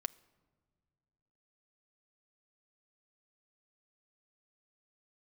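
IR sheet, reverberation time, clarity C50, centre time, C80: no single decay rate, 21.5 dB, 2 ms, 23.5 dB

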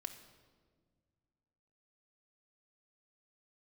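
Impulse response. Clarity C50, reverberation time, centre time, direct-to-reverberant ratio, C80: 9.5 dB, 1.7 s, 16 ms, 4.5 dB, 11.5 dB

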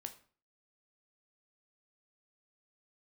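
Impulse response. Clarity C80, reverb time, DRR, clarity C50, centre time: 17.5 dB, 0.45 s, 6.0 dB, 13.5 dB, 8 ms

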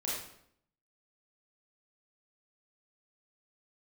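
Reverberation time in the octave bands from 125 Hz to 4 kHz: 0.80 s, 0.80 s, 0.75 s, 0.65 s, 0.60 s, 0.55 s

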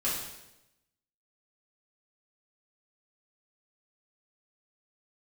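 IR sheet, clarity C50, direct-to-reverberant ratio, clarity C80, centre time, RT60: 2.0 dB, -8.5 dB, 5.0 dB, 56 ms, 0.95 s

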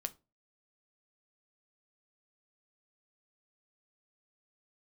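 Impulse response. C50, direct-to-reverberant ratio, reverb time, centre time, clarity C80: 21.5 dB, 8.5 dB, 0.30 s, 4 ms, 29.0 dB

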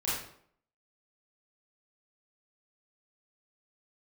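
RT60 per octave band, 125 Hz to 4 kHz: 0.60 s, 0.65 s, 0.65 s, 0.60 s, 0.50 s, 0.45 s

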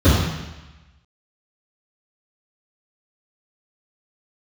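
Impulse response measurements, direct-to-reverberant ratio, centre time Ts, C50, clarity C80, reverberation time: -16.0 dB, 80 ms, -0.5 dB, 2.5 dB, 1.1 s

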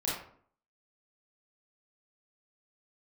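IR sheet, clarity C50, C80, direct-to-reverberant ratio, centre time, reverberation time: 1.0 dB, 6.0 dB, -7.5 dB, 53 ms, 0.55 s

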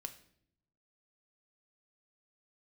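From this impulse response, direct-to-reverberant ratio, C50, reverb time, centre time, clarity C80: 7.5 dB, 13.5 dB, 0.65 s, 7 ms, 16.5 dB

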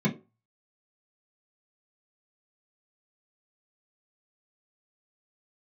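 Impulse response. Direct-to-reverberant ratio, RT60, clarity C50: -4.5 dB, 0.30 s, 15.0 dB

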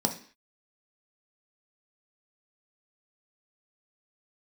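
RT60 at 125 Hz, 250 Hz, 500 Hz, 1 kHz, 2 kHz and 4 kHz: 0.35 s, 0.45 s, 0.45 s, 0.45 s, 0.55 s, no reading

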